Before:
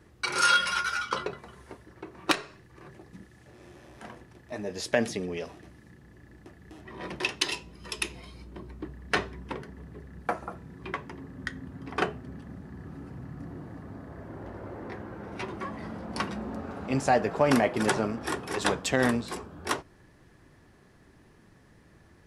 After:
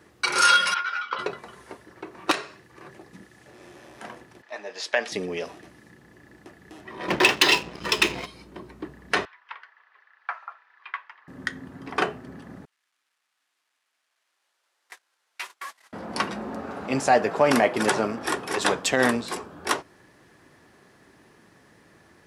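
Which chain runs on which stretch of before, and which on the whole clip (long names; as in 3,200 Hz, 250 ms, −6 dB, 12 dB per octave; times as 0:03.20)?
0:00.74–0:01.19: high-pass filter 1,100 Hz 6 dB per octave + high-frequency loss of the air 320 metres
0:04.42–0:05.12: high-pass filter 210 Hz + three-way crossover with the lows and the highs turned down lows −15 dB, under 590 Hz, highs −16 dB, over 5,900 Hz
0:07.08–0:08.26: high-frequency loss of the air 90 metres + leveller curve on the samples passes 3
0:09.25–0:11.28: high-pass filter 1,100 Hz 24 dB per octave + high-frequency loss of the air 300 metres
0:12.65–0:15.93: linear delta modulator 64 kbit/s, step −40.5 dBFS + high-pass filter 1,400 Hz + noise gate −46 dBFS, range −30 dB
whole clip: high-pass filter 330 Hz 6 dB per octave; boost into a limiter +12.5 dB; level −6.5 dB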